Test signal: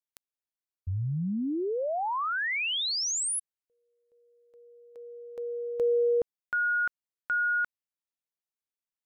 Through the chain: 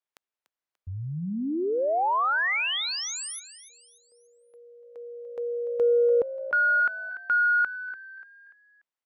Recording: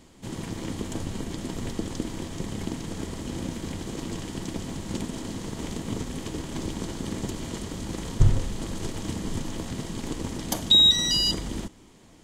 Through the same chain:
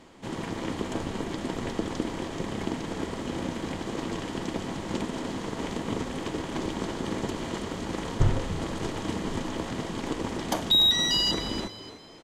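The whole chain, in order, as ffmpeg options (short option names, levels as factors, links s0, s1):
-filter_complex "[0:a]asplit=2[s0][s1];[s1]highpass=f=720:p=1,volume=5.01,asoftclip=type=tanh:threshold=0.562[s2];[s0][s2]amix=inputs=2:normalize=0,lowpass=f=1400:p=1,volume=0.501,asplit=5[s3][s4][s5][s6][s7];[s4]adelay=292,afreqshift=58,volume=0.2[s8];[s5]adelay=584,afreqshift=116,volume=0.0759[s9];[s6]adelay=876,afreqshift=174,volume=0.0288[s10];[s7]adelay=1168,afreqshift=232,volume=0.011[s11];[s3][s8][s9][s10][s11]amix=inputs=5:normalize=0"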